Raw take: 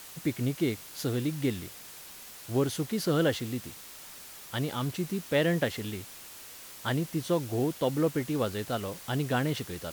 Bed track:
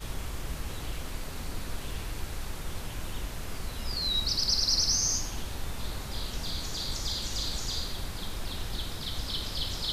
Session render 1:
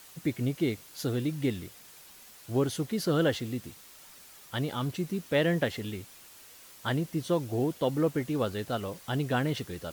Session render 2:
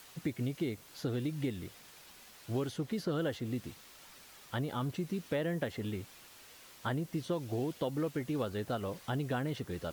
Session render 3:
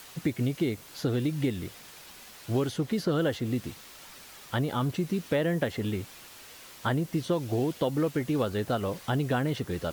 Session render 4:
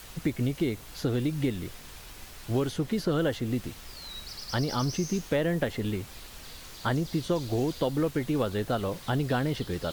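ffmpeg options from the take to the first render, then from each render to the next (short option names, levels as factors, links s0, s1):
-af "afftdn=nr=6:nf=-47"
-filter_complex "[0:a]acrossover=split=1800|5300[s0][s1][s2];[s0]acompressor=threshold=0.0251:ratio=4[s3];[s1]acompressor=threshold=0.00282:ratio=4[s4];[s2]acompressor=threshold=0.00126:ratio=4[s5];[s3][s4][s5]amix=inputs=3:normalize=0"
-af "volume=2.24"
-filter_complex "[1:a]volume=0.211[s0];[0:a][s0]amix=inputs=2:normalize=0"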